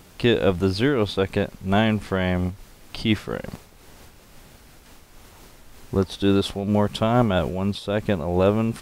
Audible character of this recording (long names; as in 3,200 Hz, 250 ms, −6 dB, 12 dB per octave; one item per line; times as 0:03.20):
amplitude modulation by smooth noise